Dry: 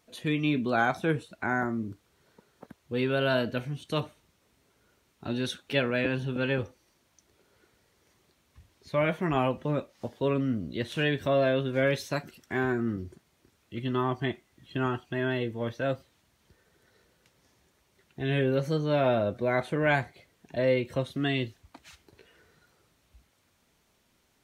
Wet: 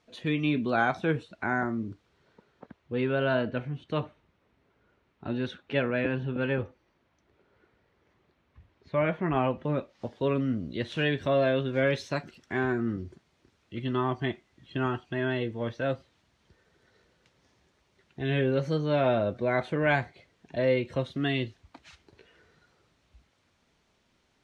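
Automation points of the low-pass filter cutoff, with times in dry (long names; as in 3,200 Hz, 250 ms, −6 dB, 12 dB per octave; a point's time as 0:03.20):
0:01.88 5,000 Hz
0:03.16 2,400 Hz
0:09.31 2,400 Hz
0:10.17 5,600 Hz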